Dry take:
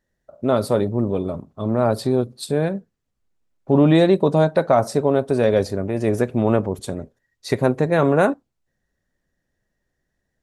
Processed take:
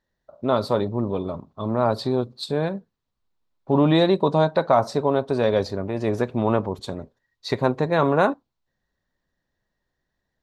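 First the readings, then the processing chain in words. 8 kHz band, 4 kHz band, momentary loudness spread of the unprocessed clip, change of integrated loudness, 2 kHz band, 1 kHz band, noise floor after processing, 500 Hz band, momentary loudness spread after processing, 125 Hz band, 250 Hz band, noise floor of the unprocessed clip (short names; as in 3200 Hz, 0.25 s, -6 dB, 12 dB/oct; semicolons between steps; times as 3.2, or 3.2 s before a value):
n/a, +2.0 dB, 12 LU, -3.0 dB, -2.0 dB, +0.5 dB, -80 dBFS, -3.0 dB, 12 LU, -4.0 dB, -4.0 dB, -77 dBFS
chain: fifteen-band EQ 1000 Hz +8 dB, 4000 Hz +8 dB, 10000 Hz -12 dB; gain -4 dB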